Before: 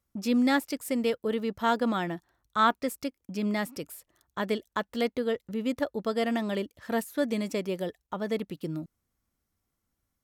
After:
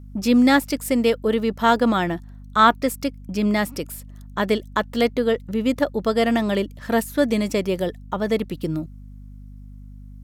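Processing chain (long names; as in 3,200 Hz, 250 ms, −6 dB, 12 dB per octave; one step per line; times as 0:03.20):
mains hum 50 Hz, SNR 18 dB
level +8.5 dB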